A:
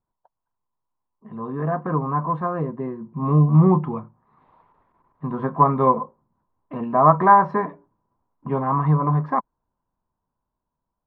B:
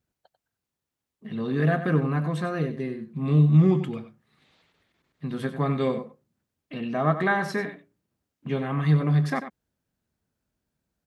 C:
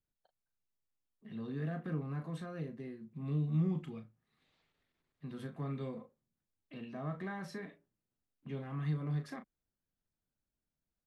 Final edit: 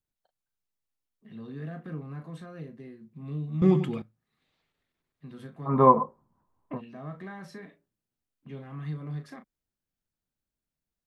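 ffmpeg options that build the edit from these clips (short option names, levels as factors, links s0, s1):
-filter_complex "[2:a]asplit=3[s0][s1][s2];[s0]atrim=end=3.622[s3];[1:a]atrim=start=3.618:end=4.022[s4];[s1]atrim=start=4.018:end=5.75[s5];[0:a]atrim=start=5.65:end=6.82[s6];[s2]atrim=start=6.72[s7];[s3][s4]acrossfade=d=0.004:c1=hsin:c2=hsin[s8];[s8][s5]acrossfade=d=0.004:c1=hsin:c2=hsin[s9];[s9][s6]acrossfade=d=0.1:c1=tri:c2=tri[s10];[s10][s7]acrossfade=d=0.1:c1=tri:c2=tri"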